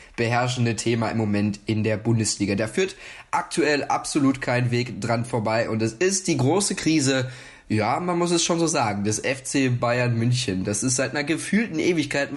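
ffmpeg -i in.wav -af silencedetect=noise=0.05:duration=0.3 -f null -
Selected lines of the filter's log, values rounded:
silence_start: 2.91
silence_end: 3.33 | silence_duration: 0.42
silence_start: 7.26
silence_end: 7.71 | silence_duration: 0.44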